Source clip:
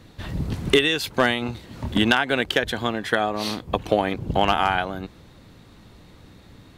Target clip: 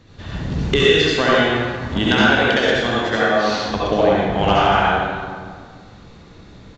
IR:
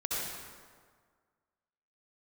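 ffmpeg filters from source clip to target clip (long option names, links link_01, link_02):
-filter_complex "[1:a]atrim=start_sample=2205[link_01];[0:a][link_01]afir=irnorm=-1:irlink=0,aresample=16000,aresample=44100"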